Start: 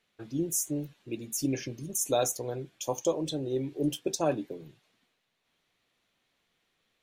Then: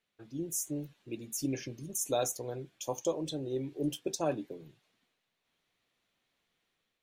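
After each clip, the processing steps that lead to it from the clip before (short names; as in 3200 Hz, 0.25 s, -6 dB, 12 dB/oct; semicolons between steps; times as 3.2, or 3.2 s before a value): AGC gain up to 4.5 dB; gain -8.5 dB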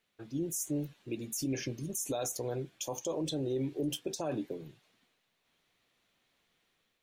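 limiter -30.5 dBFS, peak gain reduction 11 dB; gain +4.5 dB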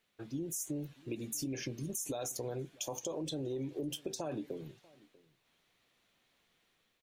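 compressor, threshold -36 dBFS, peak gain reduction 7 dB; outdoor echo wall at 110 m, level -24 dB; gain +1 dB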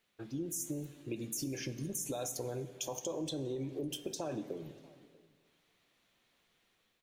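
plate-style reverb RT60 2 s, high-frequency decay 0.55×, DRR 11.5 dB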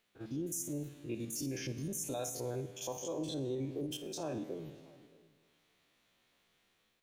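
stepped spectrum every 50 ms; gain +1.5 dB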